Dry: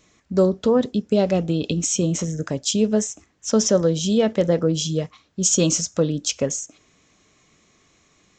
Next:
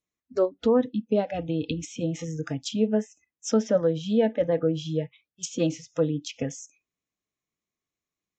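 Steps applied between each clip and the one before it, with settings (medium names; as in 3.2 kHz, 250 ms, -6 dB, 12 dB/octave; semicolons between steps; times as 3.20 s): spectral noise reduction 29 dB; low-pass that closes with the level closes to 2.2 kHz, closed at -20 dBFS; trim -3 dB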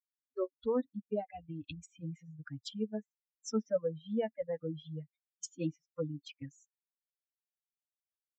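expander on every frequency bin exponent 3; trim -6.5 dB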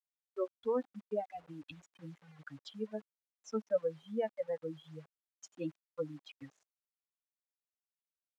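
bit crusher 10-bit; band-pass filter 930 Hz, Q 0.54; trim +1.5 dB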